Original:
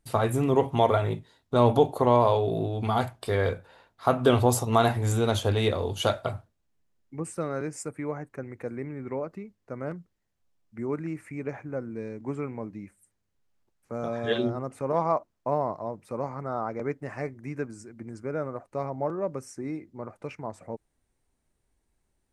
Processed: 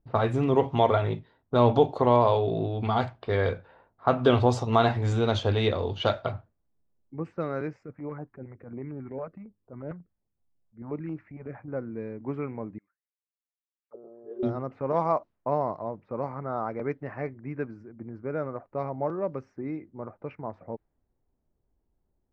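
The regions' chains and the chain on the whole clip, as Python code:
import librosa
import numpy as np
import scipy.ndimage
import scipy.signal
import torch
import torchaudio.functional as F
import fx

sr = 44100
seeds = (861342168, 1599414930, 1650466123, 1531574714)

y = fx.chain(x, sr, fx.transient(attack_db=-9, sustain_db=-1),
    fx.filter_held_notch(hz=11.0, low_hz=300.0, high_hz=2000.0), at=(7.73, 11.68))
y = fx.chain(y, sr, fx.clip_hard(threshold_db=-19.5),
    fx.peak_eq(hz=1600.0, db=4.5, octaves=2.3),
    fx.auto_wah(base_hz=380.0, top_hz=2900.0, q=14.0, full_db=-30.0, direction='down'), at=(12.78, 14.43))
y = scipy.signal.sosfilt(scipy.signal.butter(4, 5300.0, 'lowpass', fs=sr, output='sos'), y)
y = fx.env_lowpass(y, sr, base_hz=800.0, full_db=-21.5)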